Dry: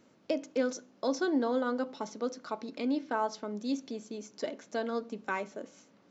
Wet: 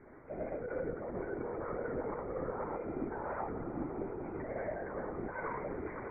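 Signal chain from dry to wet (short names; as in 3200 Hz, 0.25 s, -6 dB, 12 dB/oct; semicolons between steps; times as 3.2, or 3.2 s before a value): tape stop at the end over 0.65 s; soft clip -25.5 dBFS, distortion -15 dB; careless resampling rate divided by 6×, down filtered, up zero stuff; reverb, pre-delay 3 ms, DRR -0.5 dB; limiter -29 dBFS, peak gain reduction 22 dB; steep low-pass 2200 Hz 96 dB/oct; low shelf 72 Hz +11.5 dB; swelling echo 98 ms, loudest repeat 8, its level -17.5 dB; LPC vocoder at 8 kHz whisper; low shelf 160 Hz -11 dB; gain +9 dB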